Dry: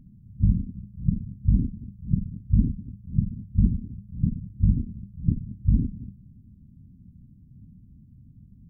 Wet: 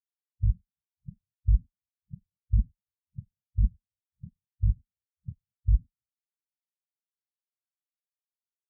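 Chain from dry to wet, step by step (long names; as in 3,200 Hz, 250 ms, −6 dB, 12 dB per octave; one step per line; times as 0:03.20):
every bin expanded away from the loudest bin 4 to 1
level −4.5 dB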